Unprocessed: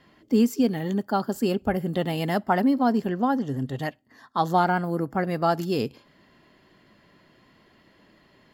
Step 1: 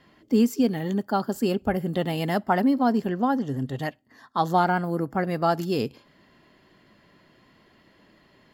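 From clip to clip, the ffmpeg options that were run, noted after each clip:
-af anull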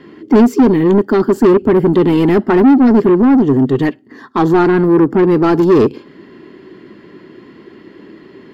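-filter_complex "[0:a]lowshelf=f=490:t=q:w=3:g=8.5,asplit=2[a][b];[b]highpass=f=720:p=1,volume=25dB,asoftclip=type=tanh:threshold=-1dB[c];[a][c]amix=inputs=2:normalize=0,lowpass=f=1.3k:p=1,volume=-6dB"

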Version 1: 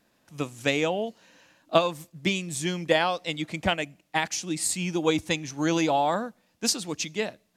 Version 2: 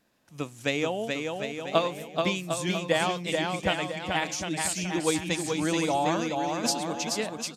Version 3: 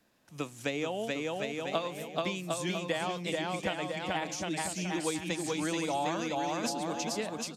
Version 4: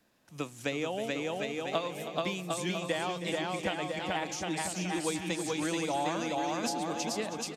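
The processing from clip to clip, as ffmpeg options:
-af "aecho=1:1:430|752.5|994.4|1176|1312:0.631|0.398|0.251|0.158|0.1,volume=-3dB"
-filter_complex "[0:a]acrossover=split=150|1000[a][b][c];[a]acompressor=threshold=-53dB:ratio=4[d];[b]acompressor=threshold=-32dB:ratio=4[e];[c]acompressor=threshold=-36dB:ratio=4[f];[d][e][f]amix=inputs=3:normalize=0"
-af "aecho=1:1:320|640|960|1280:0.251|0.0879|0.0308|0.0108"

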